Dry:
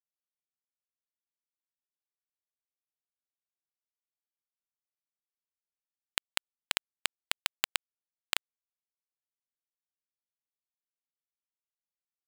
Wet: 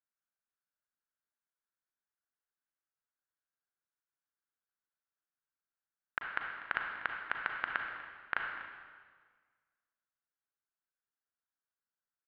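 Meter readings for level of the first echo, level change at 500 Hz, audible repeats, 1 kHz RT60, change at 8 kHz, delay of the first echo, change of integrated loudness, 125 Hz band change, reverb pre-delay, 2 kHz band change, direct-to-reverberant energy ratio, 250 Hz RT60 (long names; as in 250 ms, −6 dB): −16.5 dB, −1.0 dB, 1, 1.6 s, below −35 dB, 244 ms, −4.0 dB, −1.5 dB, 33 ms, +3.0 dB, 1.5 dB, 1.7 s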